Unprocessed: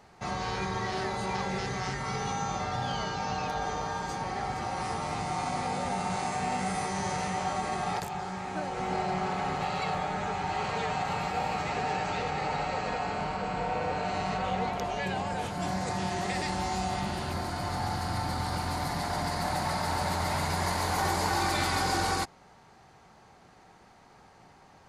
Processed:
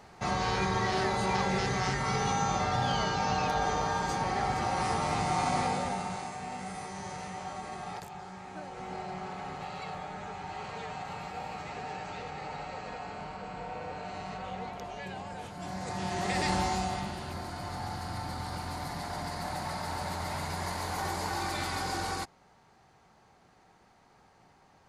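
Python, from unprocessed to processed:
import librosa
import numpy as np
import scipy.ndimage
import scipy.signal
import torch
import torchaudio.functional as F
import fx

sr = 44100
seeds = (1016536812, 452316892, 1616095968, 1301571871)

y = fx.gain(x, sr, db=fx.line((5.61, 3.0), (6.35, -8.5), (15.59, -8.5), (16.53, 3.5), (17.17, -5.5)))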